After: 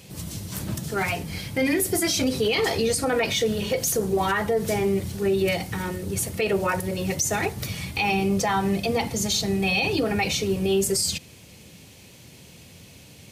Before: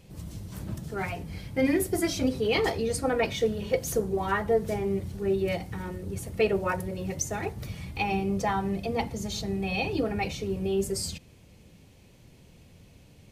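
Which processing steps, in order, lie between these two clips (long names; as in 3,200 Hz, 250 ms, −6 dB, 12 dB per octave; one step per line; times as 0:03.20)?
high-pass filter 83 Hz
high-shelf EQ 2,000 Hz +9.5 dB
brickwall limiter −20.5 dBFS, peak gain reduction 11.5 dB
level +6 dB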